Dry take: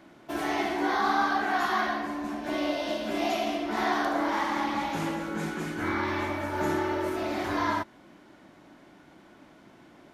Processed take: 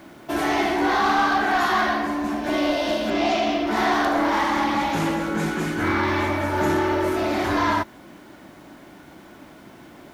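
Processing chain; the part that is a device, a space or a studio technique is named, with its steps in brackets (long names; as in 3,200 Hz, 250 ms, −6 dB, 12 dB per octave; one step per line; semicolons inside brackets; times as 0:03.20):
0:03.10–0:03.67: low-pass filter 6,000 Hz 24 dB per octave
open-reel tape (soft clipping −22.5 dBFS, distortion −16 dB; parametric band 67 Hz +4 dB 1.02 octaves; white noise bed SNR 40 dB)
level +8.5 dB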